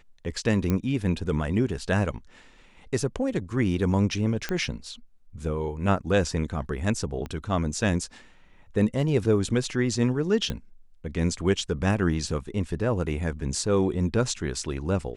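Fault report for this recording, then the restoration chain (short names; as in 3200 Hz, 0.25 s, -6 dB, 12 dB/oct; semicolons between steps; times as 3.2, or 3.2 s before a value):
0.7 pop -13 dBFS
4.49 pop -14 dBFS
7.26 pop -22 dBFS
10.5 pop -16 dBFS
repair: de-click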